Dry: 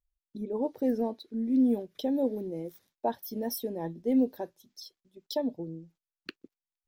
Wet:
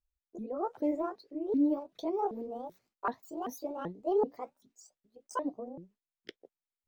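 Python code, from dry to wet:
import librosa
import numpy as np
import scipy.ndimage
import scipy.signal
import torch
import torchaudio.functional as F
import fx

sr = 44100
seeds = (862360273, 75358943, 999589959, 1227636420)

y = fx.pitch_ramps(x, sr, semitones=9.5, every_ms=385)
y = fx.high_shelf(y, sr, hz=4500.0, db=-10.0)
y = F.gain(torch.from_numpy(y), -2.5).numpy()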